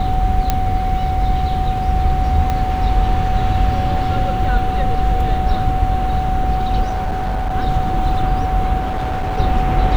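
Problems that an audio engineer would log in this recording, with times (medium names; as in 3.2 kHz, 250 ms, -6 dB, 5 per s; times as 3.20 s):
whine 750 Hz -20 dBFS
0.50 s: pop -2 dBFS
2.50 s: pop -7 dBFS
6.82–7.55 s: clipped -16.5 dBFS
8.79–9.39 s: clipped -17 dBFS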